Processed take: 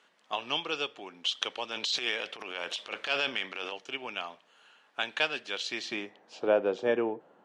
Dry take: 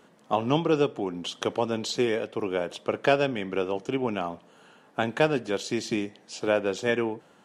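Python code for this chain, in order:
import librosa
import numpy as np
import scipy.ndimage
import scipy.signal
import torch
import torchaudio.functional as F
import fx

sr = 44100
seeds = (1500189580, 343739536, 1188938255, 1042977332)

y = fx.dynamic_eq(x, sr, hz=3800.0, q=0.95, threshold_db=-46.0, ratio=4.0, max_db=6)
y = fx.transient(y, sr, attack_db=-10, sustain_db=9, at=(1.71, 3.72))
y = fx.filter_sweep_bandpass(y, sr, from_hz=2900.0, to_hz=580.0, start_s=5.49, end_s=6.52, q=0.81)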